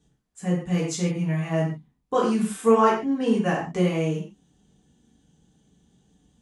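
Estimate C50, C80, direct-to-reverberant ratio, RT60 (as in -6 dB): 4.5 dB, 8.0 dB, -6.5 dB, not exponential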